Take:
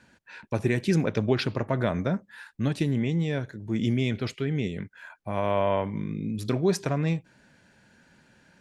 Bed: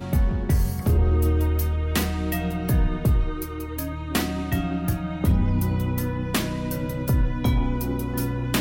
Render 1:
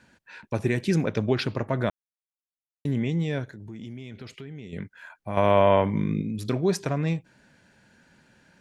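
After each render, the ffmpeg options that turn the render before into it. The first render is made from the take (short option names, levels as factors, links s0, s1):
-filter_complex "[0:a]asettb=1/sr,asplit=3[s0][s1][s2];[s0]atrim=end=3.444[s3];[s1]atrim=start=3.44:end=4.73,asetpts=PTS-STARTPTS,afade=t=in:d=0.004:c=qsin,afade=t=out:st=1.286:d=0.004:c=qsin,acompressor=threshold=0.0126:ratio=4:attack=3.2:release=140:knee=1:detection=peak[s4];[s2]atrim=start=4.726[s5];[s3][s4]acrossfade=d=0.004:c1=hsin:c2=qsin[s6];[s6][s5]acrossfade=d=0.004:c1=qsin:c2=hsin,asplit=5[s7][s8][s9][s10][s11];[s7]atrim=end=1.9,asetpts=PTS-STARTPTS,afade=t=out:st=1.896:d=0.004:c=hsin[s12];[s8]atrim=start=1.9:end=2.85,asetpts=PTS-STARTPTS,volume=0[s13];[s9]atrim=start=2.85:end=5.372,asetpts=PTS-STARTPTS,afade=t=in:d=0.004:c=hsin[s14];[s10]atrim=start=5.368:end=6.222,asetpts=PTS-STARTPTS,volume=2[s15];[s11]atrim=start=6.218[s16];[s12][s13][s14]concat=n=3:v=0:a=1[s17];[s17][s15]acrossfade=d=0.004:c1=hsin:c2=hsin[s18];[s18][s16]acrossfade=d=0.004:c1=hsin:c2=hsin"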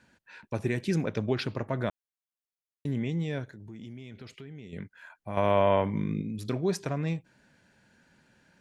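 -af "volume=0.596"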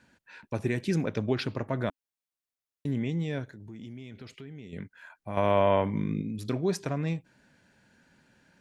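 -af "equalizer=f=270:t=o:w=0.24:g=2.5"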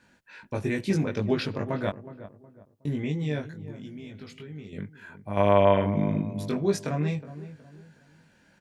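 -filter_complex "[0:a]asplit=2[s0][s1];[s1]adelay=20,volume=0.794[s2];[s0][s2]amix=inputs=2:normalize=0,asplit=2[s3][s4];[s4]adelay=367,lowpass=f=1100:p=1,volume=0.211,asplit=2[s5][s6];[s6]adelay=367,lowpass=f=1100:p=1,volume=0.36,asplit=2[s7][s8];[s8]adelay=367,lowpass=f=1100:p=1,volume=0.36[s9];[s3][s5][s7][s9]amix=inputs=4:normalize=0"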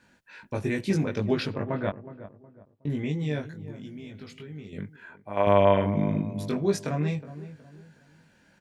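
-filter_complex "[0:a]asettb=1/sr,asplit=3[s0][s1][s2];[s0]atrim=end=1.544[s3];[s1]atrim=start=1.54:end=2.9,asetpts=PTS-STARTPTS,afade=t=in:d=0.004:c=qsin,afade=t=out:st=1.356:d=0.004:c=qsin,lowpass=2900[s4];[s2]atrim=start=2.896[s5];[s3][s4]acrossfade=d=0.004:c1=hsin:c2=qsin[s6];[s6][s5]acrossfade=d=0.004:c1=qsin:c2=hsin,asettb=1/sr,asplit=3[s7][s8][s9];[s7]atrim=end=4.964[s10];[s8]atrim=start=4.96:end=5.47,asetpts=PTS-STARTPTS,afade=t=in:d=0.004:c=qsin,afade=t=out:st=0.506:d=0.004:c=qsin,bass=f=250:g=-11,treble=f=4000:g=-9[s11];[s9]atrim=start=5.466[s12];[s10][s11]acrossfade=d=0.004:c1=hsin:c2=qsin[s13];[s13][s12]acrossfade=d=0.004:c1=qsin:c2=hsin"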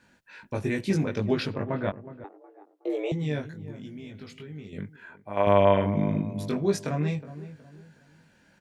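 -filter_complex "[0:a]asettb=1/sr,asplit=3[s0][s1][s2];[s0]atrim=end=2.244[s3];[s1]atrim=start=2.24:end=3.12,asetpts=PTS-STARTPTS,afade=t=in:d=0.004:c=qsin,afade=t=out:st=0.876:d=0.004:c=qsin,afreqshift=200[s4];[s2]atrim=start=3.116[s5];[s3][s4]acrossfade=d=0.004:c1=hsin:c2=qsin[s6];[s6][s5]acrossfade=d=0.004:c1=qsin:c2=hsin"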